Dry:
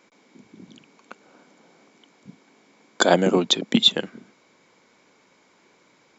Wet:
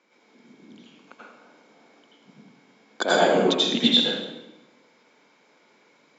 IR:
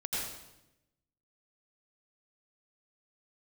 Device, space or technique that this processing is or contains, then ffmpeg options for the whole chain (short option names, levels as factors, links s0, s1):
supermarket ceiling speaker: -filter_complex "[0:a]highpass=210,lowpass=5700[s0];[1:a]atrim=start_sample=2205[s1];[s0][s1]afir=irnorm=-1:irlink=0,volume=0.596"